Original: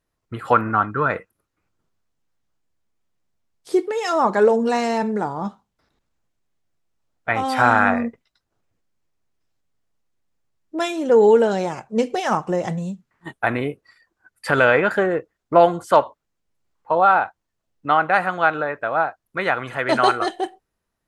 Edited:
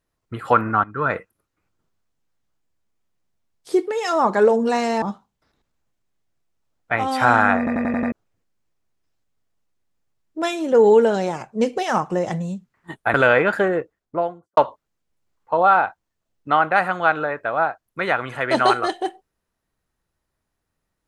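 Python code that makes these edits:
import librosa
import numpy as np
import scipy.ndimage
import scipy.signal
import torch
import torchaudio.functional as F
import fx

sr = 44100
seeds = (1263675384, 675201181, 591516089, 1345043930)

y = fx.studio_fade_out(x, sr, start_s=15.08, length_s=0.87)
y = fx.edit(y, sr, fx.fade_in_from(start_s=0.84, length_s=0.25, floor_db=-15.0),
    fx.cut(start_s=5.02, length_s=0.37),
    fx.stutter_over(start_s=7.95, slice_s=0.09, count=6),
    fx.cut(start_s=13.51, length_s=1.01), tone=tone)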